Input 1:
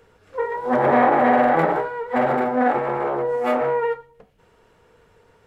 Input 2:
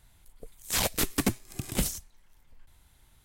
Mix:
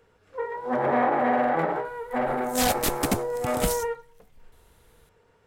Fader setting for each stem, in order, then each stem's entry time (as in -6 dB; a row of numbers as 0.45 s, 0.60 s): -6.5 dB, +1.0 dB; 0.00 s, 1.85 s